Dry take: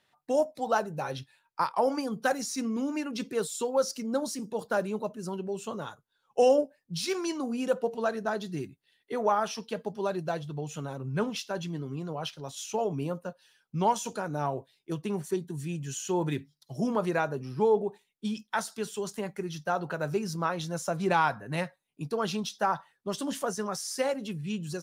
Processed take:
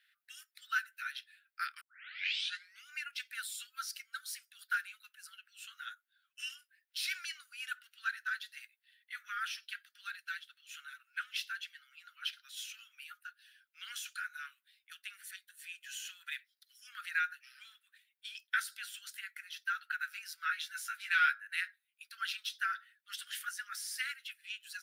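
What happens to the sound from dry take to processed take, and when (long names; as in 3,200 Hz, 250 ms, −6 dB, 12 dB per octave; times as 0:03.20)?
0:01.81: tape start 1.05 s
0:20.36–0:21.34: double-tracking delay 14 ms −5 dB
whole clip: Butterworth high-pass 1,400 Hz 96 dB per octave; parametric band 6,600 Hz −14 dB 1.1 octaves; level +4 dB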